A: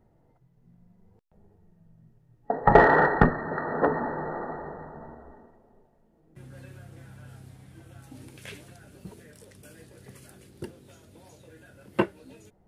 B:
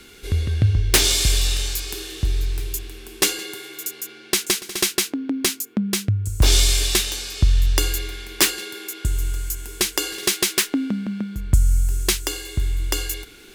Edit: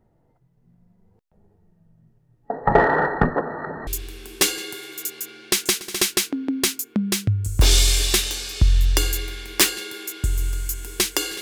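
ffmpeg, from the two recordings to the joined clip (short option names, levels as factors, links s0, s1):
-filter_complex "[0:a]apad=whole_dur=11.41,atrim=end=11.41,asplit=2[s0][s1];[s0]atrim=end=3.362[s2];[s1]atrim=start=3.358:end=3.872,asetpts=PTS-STARTPTS,areverse[s3];[1:a]atrim=start=2.678:end=10.22[s4];[s2][s3]acrossfade=d=0.004:c1=hsin:c2=hsin[s5];[s5][s4]acrossfade=d=0.004:c1=hsin:c2=hsin"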